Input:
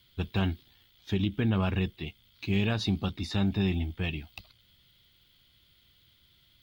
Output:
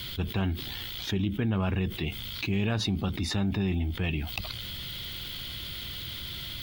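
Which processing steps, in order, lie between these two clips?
dynamic equaliser 4,300 Hz, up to −6 dB, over −52 dBFS, Q 1.4
envelope flattener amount 70%
level −2 dB

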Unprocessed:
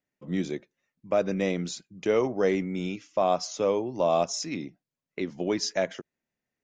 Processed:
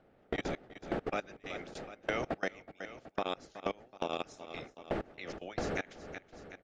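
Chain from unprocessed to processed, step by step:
ceiling on every frequency bin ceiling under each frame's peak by 19 dB
wind on the microphone 510 Hz −27 dBFS
output level in coarse steps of 23 dB
harmonic and percussive parts rebalanced harmonic −5 dB
noise gate with hold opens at −36 dBFS
parametric band 1,000 Hz −14 dB 0.3 octaves
on a send: repeating echo 373 ms, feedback 53%, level −24 dB
on the sum: downward compressor 4 to 1, threshold −40 dBFS, peak gain reduction 16 dB
mid-hump overdrive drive 10 dB, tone 2,900 Hz, clips at −21.5 dBFS
level +5 dB

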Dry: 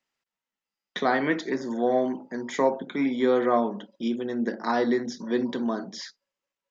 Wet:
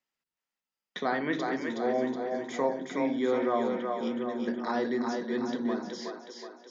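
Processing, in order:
echo with a time of its own for lows and highs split 340 Hz, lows 100 ms, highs 370 ms, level −4 dB
level −6 dB

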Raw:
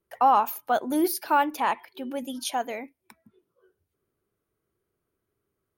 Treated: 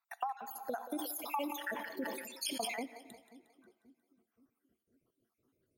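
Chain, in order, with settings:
time-frequency cells dropped at random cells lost 69%
low-shelf EQ 410 Hz +4.5 dB
notch filter 410 Hz, Q 12
convolution reverb RT60 1.4 s, pre-delay 4 ms, DRR 16 dB
downward compressor 16 to 1, threshold −37 dBFS, peak gain reduction 22.5 dB
low-shelf EQ 120 Hz −11 dB
echo with a time of its own for lows and highs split 340 Hz, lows 531 ms, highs 179 ms, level −13.5 dB
0:00.76–0:02.82: level that may fall only so fast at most 44 dB per second
level +2 dB

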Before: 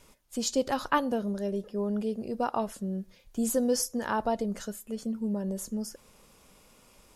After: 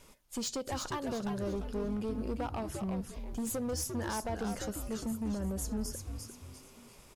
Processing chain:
downward compressor 10 to 1, threshold −30 dBFS, peak gain reduction 11.5 dB
gain into a clipping stage and back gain 31.5 dB
echo with shifted repeats 347 ms, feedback 36%, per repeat −150 Hz, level −5 dB

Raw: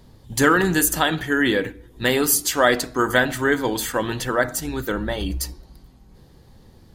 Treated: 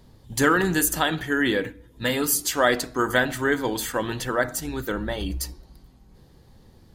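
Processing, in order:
0:01.66–0:02.39: notch comb filter 380 Hz
level −3 dB

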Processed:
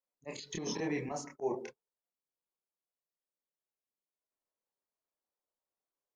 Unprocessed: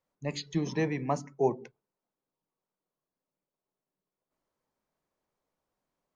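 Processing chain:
bass and treble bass −12 dB, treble +11 dB
noise gate −47 dBFS, range −17 dB
volume swells 144 ms
high-shelf EQ 2,700 Hz −10 dB
brickwall limiter −32 dBFS, peak gain reduction 8.5 dB
multi-voice chorus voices 4, 1.5 Hz, delay 28 ms, depth 3 ms
level +9 dB

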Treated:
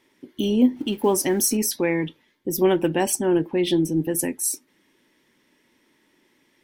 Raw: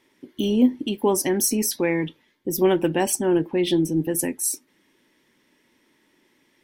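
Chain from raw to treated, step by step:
0:00.76–0:01.57: mu-law and A-law mismatch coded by mu

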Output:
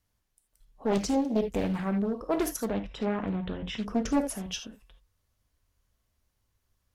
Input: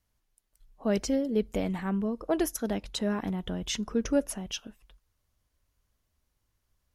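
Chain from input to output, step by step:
0:02.65–0:03.82: Savitzky-Golay smoothing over 25 samples
reverb whose tail is shaped and stops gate 100 ms flat, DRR 6.5 dB
highs frequency-modulated by the lows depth 0.61 ms

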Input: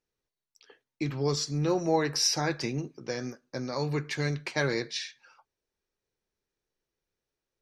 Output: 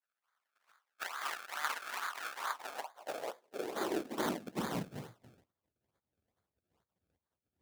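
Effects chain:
gate on every frequency bin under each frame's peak −30 dB weak
low-shelf EQ 450 Hz +10 dB
in parallel at +1 dB: downward compressor, threshold −59 dBFS, peak gain reduction 16 dB
on the sum: sample-and-hold swept by an LFO 31×, swing 100% 2.3 Hz
high-pass filter sweep 1,300 Hz → 74 Hz, 0:02.26–0:05.70
level +10.5 dB

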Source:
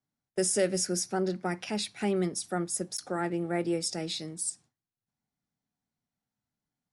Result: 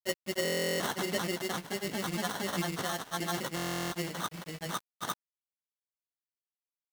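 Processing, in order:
chorus effect 0.49 Hz, delay 17 ms, depth 2.2 ms
decimation without filtering 18×
high-pass filter 140 Hz 24 dB per octave
parametric band 390 Hz −7 dB 2.2 octaves
in parallel at −1 dB: brickwall limiter −33.5 dBFS, peak gain reduction 14.5 dB
on the sum: granular cloud, spray 641 ms, pitch spread up and down by 0 semitones
log-companded quantiser 4 bits
buffer that repeats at 0:00.43/0:03.55, samples 1,024, times 15
level +2.5 dB

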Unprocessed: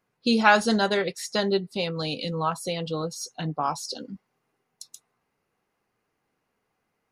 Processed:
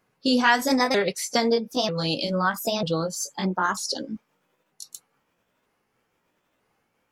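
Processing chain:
pitch shifter swept by a sawtooth +4.5 semitones, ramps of 943 ms
downward compressor 2 to 1, threshold −26 dBFS, peak gain reduction 7.5 dB
level +6 dB

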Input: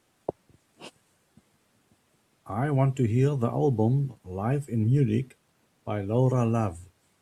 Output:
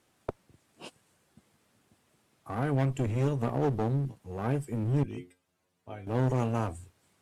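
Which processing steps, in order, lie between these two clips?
0:05.03–0:06.07: stiff-string resonator 88 Hz, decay 0.25 s, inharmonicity 0.002
asymmetric clip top −30 dBFS, bottom −15.5 dBFS
level −1.5 dB

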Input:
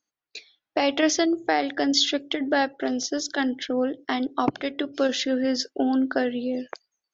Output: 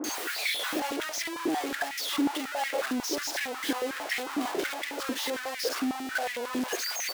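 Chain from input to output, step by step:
sign of each sample alone
multiband delay without the direct sound lows, highs 40 ms, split 1,100 Hz
high-pass on a step sequencer 11 Hz 300–2,000 Hz
level −7.5 dB

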